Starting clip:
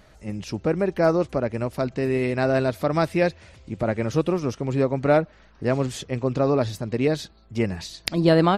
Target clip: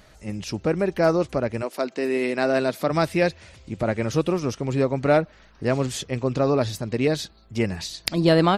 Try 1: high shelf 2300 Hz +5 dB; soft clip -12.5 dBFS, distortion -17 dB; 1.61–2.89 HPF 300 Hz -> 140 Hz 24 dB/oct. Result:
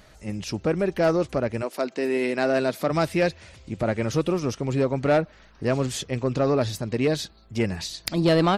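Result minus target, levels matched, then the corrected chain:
soft clip: distortion +12 dB
high shelf 2300 Hz +5 dB; soft clip -4 dBFS, distortion -29 dB; 1.61–2.89 HPF 300 Hz -> 140 Hz 24 dB/oct

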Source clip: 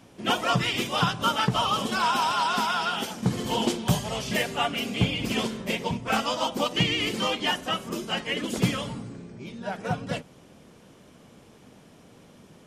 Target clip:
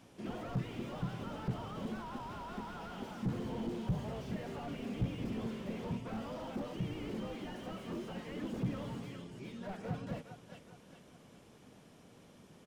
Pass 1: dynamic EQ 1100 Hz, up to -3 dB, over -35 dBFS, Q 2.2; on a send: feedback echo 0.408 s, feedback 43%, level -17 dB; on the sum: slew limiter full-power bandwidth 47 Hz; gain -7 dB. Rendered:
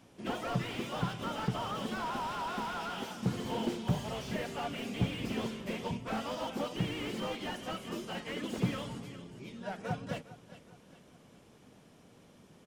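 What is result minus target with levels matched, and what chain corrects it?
slew limiter: distortion -7 dB
dynamic EQ 1100 Hz, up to -3 dB, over -35 dBFS, Q 2.2; on a send: feedback echo 0.408 s, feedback 43%, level -17 dB; on the sum: slew limiter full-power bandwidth 13.5 Hz; gain -7 dB

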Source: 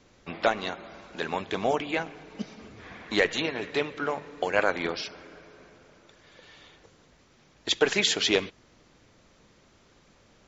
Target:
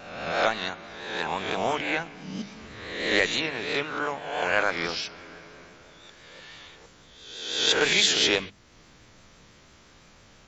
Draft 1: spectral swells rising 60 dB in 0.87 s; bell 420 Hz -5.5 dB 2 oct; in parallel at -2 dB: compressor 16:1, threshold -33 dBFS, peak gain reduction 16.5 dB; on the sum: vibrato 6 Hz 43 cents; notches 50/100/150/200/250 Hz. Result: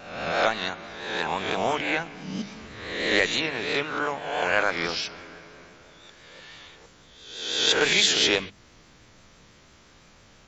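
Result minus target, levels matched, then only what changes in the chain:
compressor: peak gain reduction -11 dB
change: compressor 16:1, threshold -44.5 dBFS, peak gain reduction 27.5 dB

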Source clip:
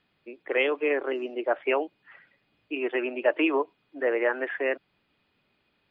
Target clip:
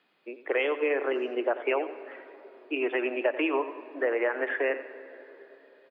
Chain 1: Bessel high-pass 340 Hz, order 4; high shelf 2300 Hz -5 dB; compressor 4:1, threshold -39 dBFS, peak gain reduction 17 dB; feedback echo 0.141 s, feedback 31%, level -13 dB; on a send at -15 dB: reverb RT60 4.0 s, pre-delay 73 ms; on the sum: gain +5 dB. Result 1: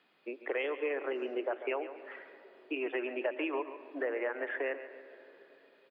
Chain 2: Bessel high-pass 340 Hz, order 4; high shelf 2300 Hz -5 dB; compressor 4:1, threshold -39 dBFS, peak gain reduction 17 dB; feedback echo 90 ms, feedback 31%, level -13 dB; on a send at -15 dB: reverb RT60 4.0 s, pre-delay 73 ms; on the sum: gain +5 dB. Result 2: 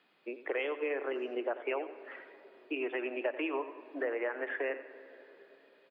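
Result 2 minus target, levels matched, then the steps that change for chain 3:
compressor: peak gain reduction +7.5 dB
change: compressor 4:1, threshold -29 dBFS, peak gain reduction 9.5 dB

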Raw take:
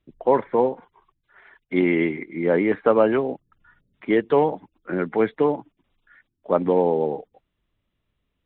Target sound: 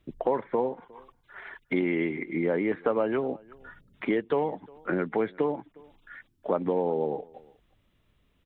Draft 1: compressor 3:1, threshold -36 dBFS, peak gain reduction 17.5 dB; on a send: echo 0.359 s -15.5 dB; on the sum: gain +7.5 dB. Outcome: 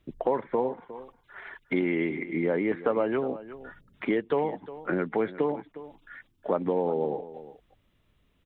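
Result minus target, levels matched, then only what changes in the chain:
echo-to-direct +9.5 dB
change: echo 0.359 s -25 dB

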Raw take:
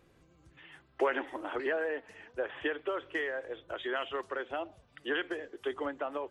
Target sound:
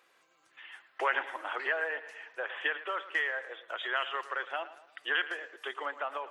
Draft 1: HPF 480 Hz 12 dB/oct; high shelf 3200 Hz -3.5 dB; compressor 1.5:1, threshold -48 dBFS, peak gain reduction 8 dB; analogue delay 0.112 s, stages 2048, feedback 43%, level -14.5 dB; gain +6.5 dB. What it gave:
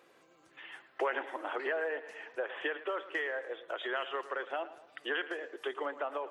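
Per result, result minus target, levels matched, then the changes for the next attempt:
compressor: peak gain reduction +8 dB; 500 Hz band +6.5 dB
remove: compressor 1.5:1, threshold -48 dBFS, peak gain reduction 8 dB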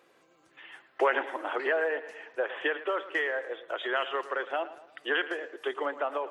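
500 Hz band +6.5 dB
change: HPF 1000 Hz 12 dB/oct

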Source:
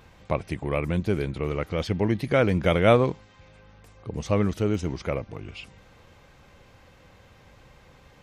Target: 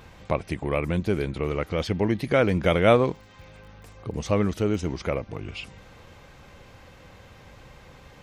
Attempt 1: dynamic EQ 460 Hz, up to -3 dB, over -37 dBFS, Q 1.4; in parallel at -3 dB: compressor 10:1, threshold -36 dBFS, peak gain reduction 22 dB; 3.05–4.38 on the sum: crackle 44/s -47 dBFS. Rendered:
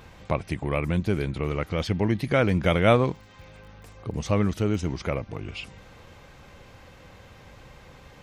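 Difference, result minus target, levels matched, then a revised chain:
125 Hz band +2.5 dB
dynamic EQ 120 Hz, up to -3 dB, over -37 dBFS, Q 1.4; in parallel at -3 dB: compressor 10:1, threshold -36 dBFS, peak gain reduction 22.5 dB; 3.05–4.38 on the sum: crackle 44/s -47 dBFS

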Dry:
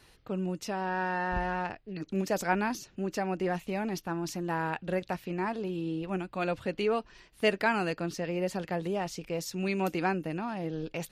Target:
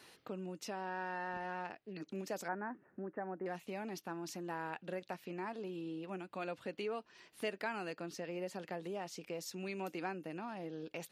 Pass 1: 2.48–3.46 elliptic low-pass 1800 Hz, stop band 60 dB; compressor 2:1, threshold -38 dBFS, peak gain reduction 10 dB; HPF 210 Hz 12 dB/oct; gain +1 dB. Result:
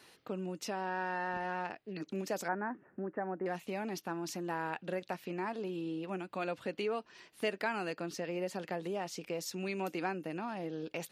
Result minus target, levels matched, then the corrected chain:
compressor: peak gain reduction -5 dB
2.48–3.46 elliptic low-pass 1800 Hz, stop band 60 dB; compressor 2:1, threshold -47.5 dBFS, peak gain reduction 14.5 dB; HPF 210 Hz 12 dB/oct; gain +1 dB

